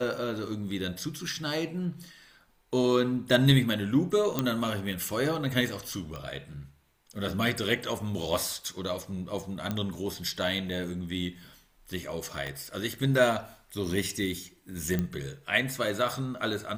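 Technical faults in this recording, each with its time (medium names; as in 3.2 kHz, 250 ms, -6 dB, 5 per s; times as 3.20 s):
4.39 s: pop -11 dBFS
6.16 s: pop -24 dBFS
9.71 s: pop -17 dBFS
12.47 s: pop -21 dBFS
14.99 s: pop -16 dBFS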